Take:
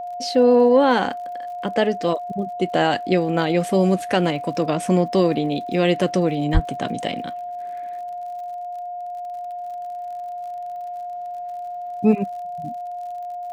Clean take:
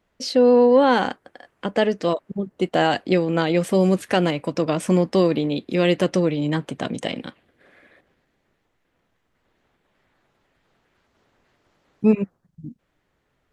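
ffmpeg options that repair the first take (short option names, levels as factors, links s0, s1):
-filter_complex "[0:a]adeclick=t=4,bandreject=f=710:w=30,asplit=3[s0][s1][s2];[s0]afade=t=out:st=6.53:d=0.02[s3];[s1]highpass=f=140:w=0.5412,highpass=f=140:w=1.3066,afade=t=in:st=6.53:d=0.02,afade=t=out:st=6.65:d=0.02[s4];[s2]afade=t=in:st=6.65:d=0.02[s5];[s3][s4][s5]amix=inputs=3:normalize=0"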